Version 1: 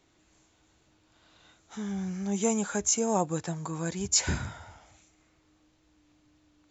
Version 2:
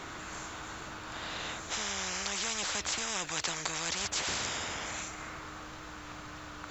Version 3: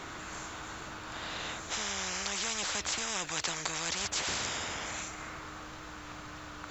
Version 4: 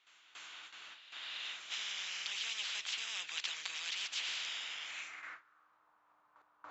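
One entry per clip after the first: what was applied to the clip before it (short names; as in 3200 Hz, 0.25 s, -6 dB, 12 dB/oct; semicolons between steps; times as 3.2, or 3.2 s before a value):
bell 1300 Hz +12 dB 1.1 oct; spectral compressor 10:1; gain -6.5 dB
nothing audible
gate with hold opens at -32 dBFS; band-pass sweep 3000 Hz -> 970 Hz, 4.87–5.86; pre-echo 0.283 s -14 dB; gain +1 dB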